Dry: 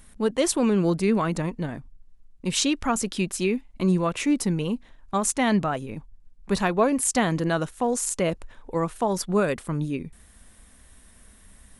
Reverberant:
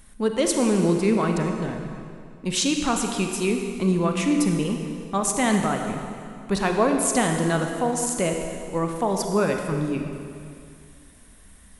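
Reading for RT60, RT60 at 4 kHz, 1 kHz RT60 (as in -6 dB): 2.4 s, 2.1 s, 2.4 s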